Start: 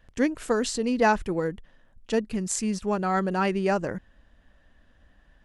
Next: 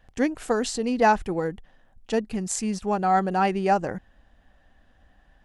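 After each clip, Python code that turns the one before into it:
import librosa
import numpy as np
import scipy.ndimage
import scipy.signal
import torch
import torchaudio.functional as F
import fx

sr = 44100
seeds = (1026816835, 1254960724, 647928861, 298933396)

y = fx.peak_eq(x, sr, hz=770.0, db=10.0, octaves=0.23)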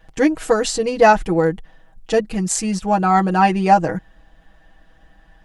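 y = x + 0.81 * np.pad(x, (int(6.2 * sr / 1000.0), 0))[:len(x)]
y = y * 10.0 ** (5.5 / 20.0)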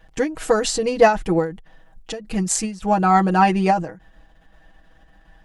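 y = fx.end_taper(x, sr, db_per_s=130.0)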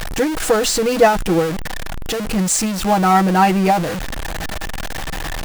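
y = x + 0.5 * 10.0 ** (-18.5 / 20.0) * np.sign(x)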